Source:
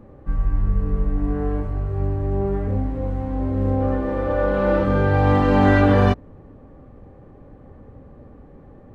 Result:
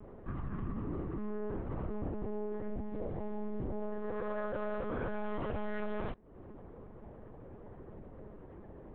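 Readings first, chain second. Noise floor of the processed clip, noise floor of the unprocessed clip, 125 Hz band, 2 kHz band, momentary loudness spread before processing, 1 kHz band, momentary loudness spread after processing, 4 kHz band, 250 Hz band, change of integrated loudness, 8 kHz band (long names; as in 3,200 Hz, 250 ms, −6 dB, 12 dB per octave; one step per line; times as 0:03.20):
−52 dBFS, −46 dBFS, −22.0 dB, −19.0 dB, 10 LU, −19.0 dB, 15 LU, −21.0 dB, −18.0 dB, −18.5 dB, can't be measured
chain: high-pass filter 99 Hz 12 dB per octave
downward compressor 6 to 1, threshold −31 dBFS, peak gain reduction 17.5 dB
one-pitch LPC vocoder at 8 kHz 210 Hz
level −3.5 dB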